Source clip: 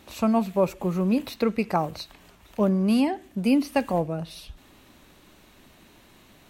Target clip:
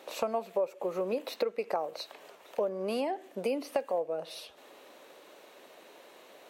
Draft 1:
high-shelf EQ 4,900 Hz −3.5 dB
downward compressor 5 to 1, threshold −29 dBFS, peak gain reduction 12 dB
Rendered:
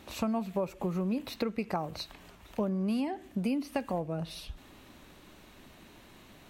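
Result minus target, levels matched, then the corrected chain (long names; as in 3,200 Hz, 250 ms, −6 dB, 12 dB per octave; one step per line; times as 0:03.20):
500 Hz band −5.5 dB
high-pass with resonance 500 Hz, resonance Q 3.1
high-shelf EQ 4,900 Hz −3.5 dB
downward compressor 5 to 1, threshold −29 dBFS, peak gain reduction 17 dB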